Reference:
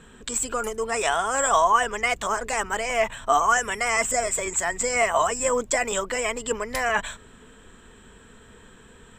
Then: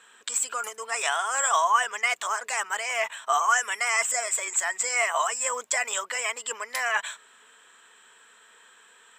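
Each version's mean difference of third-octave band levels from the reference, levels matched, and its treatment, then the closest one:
7.5 dB: high-pass filter 970 Hz 12 dB per octave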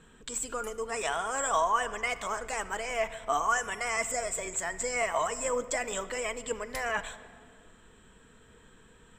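1.5 dB: rectangular room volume 3,500 cubic metres, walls mixed, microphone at 0.58 metres
level −8 dB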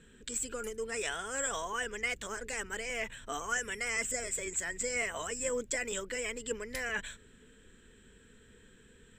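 4.0 dB: flat-topped bell 880 Hz −11.5 dB 1.2 octaves
level −9 dB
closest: second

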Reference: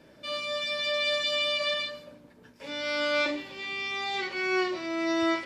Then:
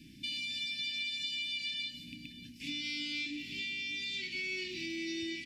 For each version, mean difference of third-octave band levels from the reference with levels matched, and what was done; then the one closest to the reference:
11.5 dB: loose part that buzzes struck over −49 dBFS, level −37 dBFS
elliptic band-stop filter 280–2,400 Hz, stop band 40 dB
downward compressor 6 to 1, threshold −42 dBFS, peak gain reduction 15 dB
single-tap delay 587 ms −15 dB
level +6 dB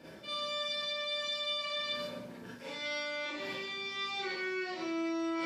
5.5 dB: high-pass filter 71 Hz
brickwall limiter −25 dBFS, peak gain reduction 9 dB
reversed playback
downward compressor 6 to 1, threshold −43 dBFS, peak gain reduction 13.5 dB
reversed playback
four-comb reverb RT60 0.37 s, combs from 33 ms, DRR −7.5 dB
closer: second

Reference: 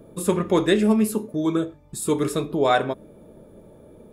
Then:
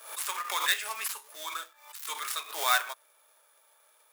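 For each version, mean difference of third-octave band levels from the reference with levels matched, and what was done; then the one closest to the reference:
18.0 dB: gap after every zero crossing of 0.067 ms
high-pass filter 1,100 Hz 24 dB per octave
high-shelf EQ 10,000 Hz +10 dB
background raised ahead of every attack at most 97 dB per second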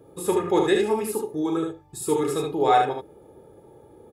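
3.5 dB: high-pass filter 75 Hz
parametric band 820 Hz +6.5 dB 0.36 octaves
comb filter 2.4 ms, depth 61%
on a send: ambience of single reflections 39 ms −8 dB, 74 ms −4 dB
on the sum: level −5 dB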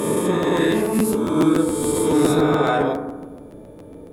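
8.5 dB: peak hold with a rise ahead of every peak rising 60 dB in 1.75 s
brickwall limiter −14 dBFS, peak gain reduction 9 dB
feedback delay network reverb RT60 1.1 s, low-frequency decay 1.5×, high-frequency decay 0.3×, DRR 2.5 dB
regular buffer underruns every 0.14 s, samples 512, repeat, from 0:00.42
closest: second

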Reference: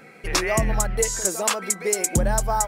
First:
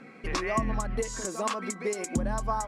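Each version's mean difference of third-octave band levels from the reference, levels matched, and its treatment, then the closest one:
4.5 dB: downward compressor, threshold −22 dBFS, peak gain reduction 7 dB
high-frequency loss of the air 66 metres
hollow resonant body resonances 250/1,100 Hz, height 13 dB, ringing for 65 ms
level −4 dB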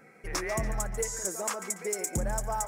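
2.5 dB: flat-topped bell 3,400 Hz −8.5 dB 1 octave
soft clipping −11.5 dBFS, distortion −21 dB
feedback echo with a high-pass in the loop 143 ms, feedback 44%, level −12.5 dB
level −8.5 dB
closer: second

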